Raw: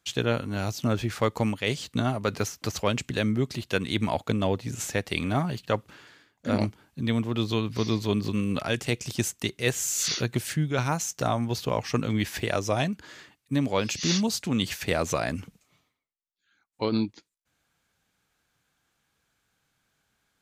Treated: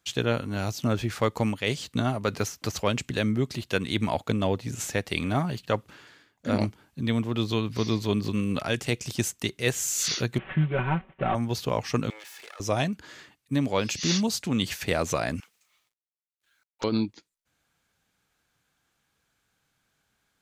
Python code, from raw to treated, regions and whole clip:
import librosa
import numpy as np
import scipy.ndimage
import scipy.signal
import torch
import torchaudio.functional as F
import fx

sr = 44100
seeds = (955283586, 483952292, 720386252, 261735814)

y = fx.chain(x, sr, fx.cvsd(bps=16000),
    fx.comb(ms=5.3, depth=0.76), at=(10.38, 11.35))
y = fx.chain(y, sr, fx.lower_of_two(delay_ms=2.3),
    fx.highpass(hz=760.0, slope=12),
    fx.level_steps(step_db=23), at=(12.1, 12.6))
y = fx.chain(y, sr, fx.highpass(hz=1200.0, slope=12),
    fx.quant_dither(seeds[0], bits=12, dither='none'),
    fx.doppler_dist(depth_ms=0.55), at=(15.4, 16.84))